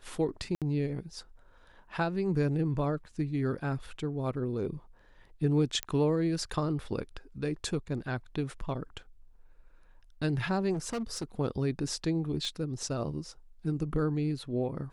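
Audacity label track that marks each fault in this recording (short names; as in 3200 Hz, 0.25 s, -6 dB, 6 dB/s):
0.550000	0.620000	gap 67 ms
5.830000	5.830000	pop -15 dBFS
10.730000	11.240000	clipped -30 dBFS
12.450000	12.450000	pop -25 dBFS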